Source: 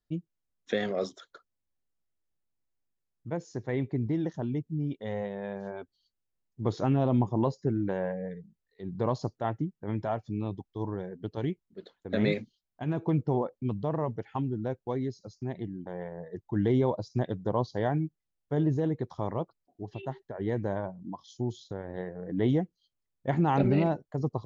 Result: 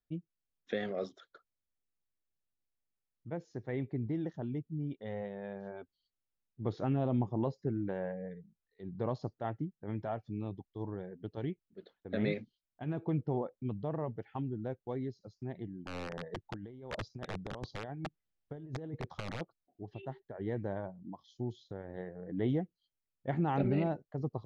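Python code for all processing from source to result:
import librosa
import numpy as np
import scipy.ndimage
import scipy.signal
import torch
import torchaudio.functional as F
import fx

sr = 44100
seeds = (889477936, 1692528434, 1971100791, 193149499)

y = fx.chain(x, sr, fx.over_compress(threshold_db=-32.0, ratio=-0.5),
    fx.overflow_wrap(gain_db=25.0), at=(15.85, 19.41))
y = scipy.signal.sosfilt(scipy.signal.butter(2, 3900.0, 'lowpass', fs=sr, output='sos'), y)
y = fx.peak_eq(y, sr, hz=1000.0, db=-5.5, octaves=0.22)
y = y * 10.0 ** (-6.0 / 20.0)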